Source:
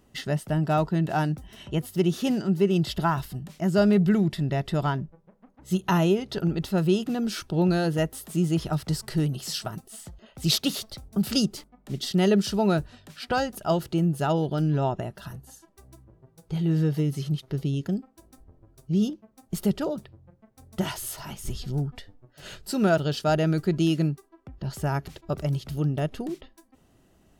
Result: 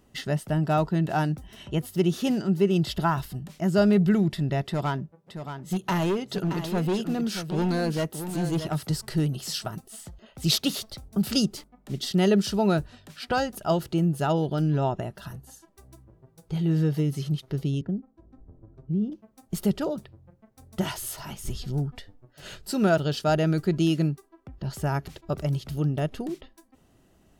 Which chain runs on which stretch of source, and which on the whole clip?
0:04.64–0:08.90: high-pass filter 120 Hz + hard clipping −21.5 dBFS + single-tap delay 624 ms −9 dB
0:17.81–0:19.12: low-pass filter 1,100 Hz + parametric band 840 Hz −7 dB 2.6 octaves + multiband upward and downward compressor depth 40%
whole clip: no processing

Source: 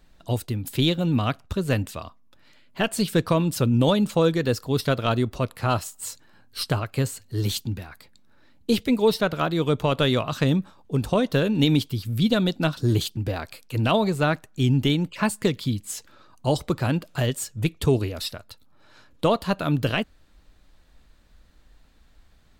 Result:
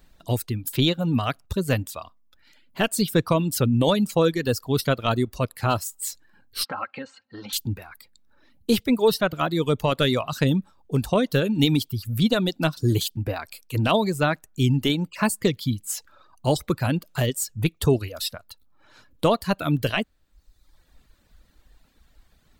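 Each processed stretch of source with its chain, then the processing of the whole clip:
0:06.65–0:07.53: comb filter 3.8 ms, depth 70% + downward compressor 5 to 1, threshold −27 dBFS + loudspeaker in its box 250–3,900 Hz, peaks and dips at 310 Hz −6 dB, 440 Hz −4 dB, 860 Hz +7 dB, 1,400 Hz +8 dB, 3,400 Hz −7 dB
whole clip: reverb reduction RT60 0.95 s; high-shelf EQ 11,000 Hz +9 dB; level +1 dB

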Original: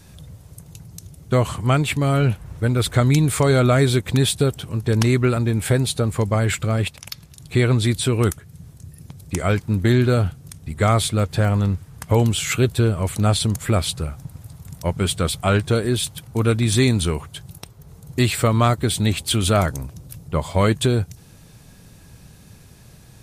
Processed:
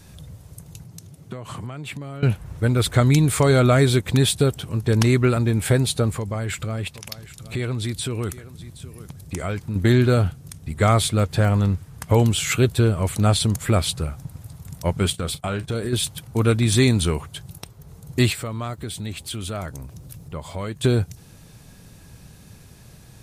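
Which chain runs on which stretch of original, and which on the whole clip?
0:00.84–0:02.23: high-pass filter 100 Hz 24 dB per octave + high-shelf EQ 4,600 Hz −5 dB + downward compressor 20 to 1, threshold −28 dBFS
0:06.18–0:09.76: downward compressor 2.5 to 1, threshold −26 dBFS + single-tap delay 771 ms −16 dB
0:15.10–0:15.93: noise gate −31 dBFS, range −17 dB + downward compressor 4 to 1, threshold −23 dBFS + double-tracking delay 35 ms −13.5 dB
0:18.32–0:20.83: downward compressor 2 to 1, threshold −36 dBFS + background noise pink −71 dBFS
whole clip: no processing

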